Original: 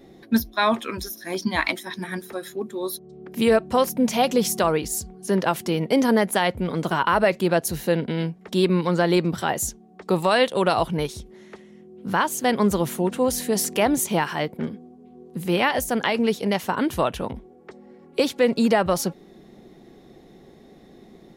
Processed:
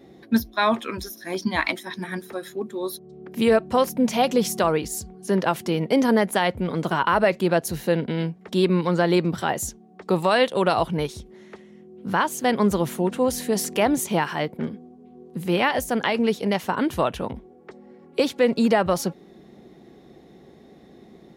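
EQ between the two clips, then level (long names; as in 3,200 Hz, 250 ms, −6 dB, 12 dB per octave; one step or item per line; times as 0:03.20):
high-pass filter 50 Hz
high-shelf EQ 5,500 Hz −4.5 dB
0.0 dB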